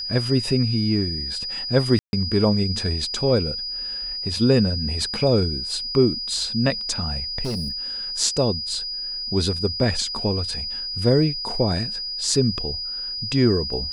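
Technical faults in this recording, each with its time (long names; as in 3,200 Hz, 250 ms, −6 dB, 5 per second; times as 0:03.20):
whistle 4,900 Hz −27 dBFS
0:01.99–0:02.13: drop-out 141 ms
0:07.44–0:07.71: clipping −23 dBFS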